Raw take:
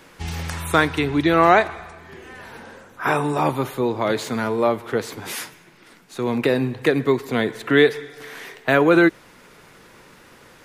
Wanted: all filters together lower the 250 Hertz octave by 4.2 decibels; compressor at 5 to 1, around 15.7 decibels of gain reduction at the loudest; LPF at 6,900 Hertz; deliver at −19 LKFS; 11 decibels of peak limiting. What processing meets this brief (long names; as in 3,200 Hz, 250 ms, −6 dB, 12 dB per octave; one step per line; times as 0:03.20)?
low-pass filter 6,900 Hz
parametric band 250 Hz −6 dB
downward compressor 5 to 1, threshold −29 dBFS
level +17 dB
brickwall limiter −7.5 dBFS